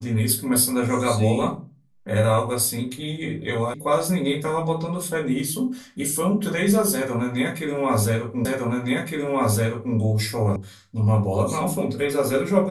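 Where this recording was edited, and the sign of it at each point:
3.74 sound cut off
8.45 repeat of the last 1.51 s
10.56 sound cut off

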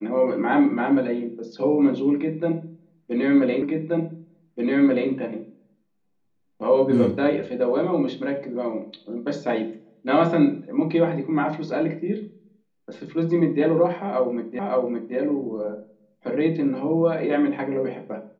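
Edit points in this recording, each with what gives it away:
3.62 repeat of the last 1.48 s
14.59 repeat of the last 0.57 s

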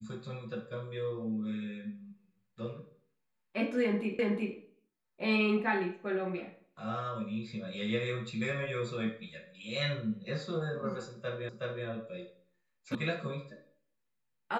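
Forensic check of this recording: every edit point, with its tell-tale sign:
4.19 repeat of the last 0.37 s
11.49 repeat of the last 0.37 s
12.95 sound cut off

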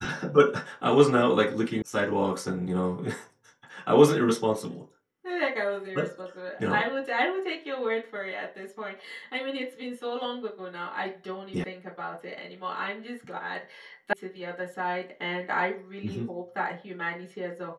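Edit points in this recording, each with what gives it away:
1.82 sound cut off
11.64 sound cut off
14.13 sound cut off

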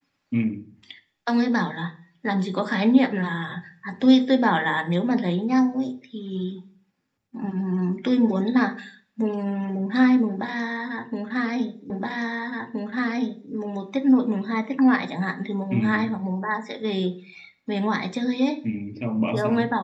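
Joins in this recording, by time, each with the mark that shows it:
11.9 repeat of the last 1.62 s

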